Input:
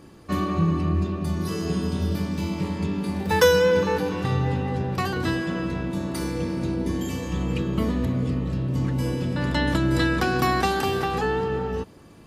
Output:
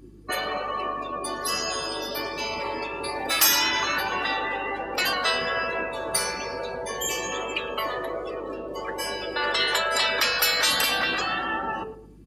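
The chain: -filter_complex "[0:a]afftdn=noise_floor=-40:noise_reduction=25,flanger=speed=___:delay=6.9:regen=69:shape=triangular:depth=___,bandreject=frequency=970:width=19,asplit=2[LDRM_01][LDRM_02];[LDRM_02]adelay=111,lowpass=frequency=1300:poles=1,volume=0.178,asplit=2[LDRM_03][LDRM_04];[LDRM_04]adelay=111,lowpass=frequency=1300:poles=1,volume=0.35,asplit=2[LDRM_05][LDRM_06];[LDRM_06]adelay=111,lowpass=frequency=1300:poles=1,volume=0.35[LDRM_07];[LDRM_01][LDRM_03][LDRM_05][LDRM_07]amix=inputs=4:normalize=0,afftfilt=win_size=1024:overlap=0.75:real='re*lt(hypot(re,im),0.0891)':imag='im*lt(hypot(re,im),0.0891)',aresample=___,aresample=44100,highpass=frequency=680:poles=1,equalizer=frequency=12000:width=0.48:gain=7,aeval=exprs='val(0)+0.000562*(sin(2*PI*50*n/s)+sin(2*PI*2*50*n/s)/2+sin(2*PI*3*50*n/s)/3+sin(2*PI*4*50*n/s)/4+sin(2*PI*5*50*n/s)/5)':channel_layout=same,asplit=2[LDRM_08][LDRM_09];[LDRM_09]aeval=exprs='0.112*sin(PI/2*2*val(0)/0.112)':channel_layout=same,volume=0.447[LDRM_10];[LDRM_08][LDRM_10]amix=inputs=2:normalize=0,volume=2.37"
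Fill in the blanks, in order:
1.2, 6.4, 32000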